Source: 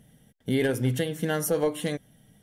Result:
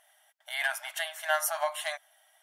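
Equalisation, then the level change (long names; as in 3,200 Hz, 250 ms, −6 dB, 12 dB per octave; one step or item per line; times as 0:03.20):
linear-phase brick-wall high-pass 590 Hz
parametric band 1,200 Hz +6 dB 1.9 octaves
0.0 dB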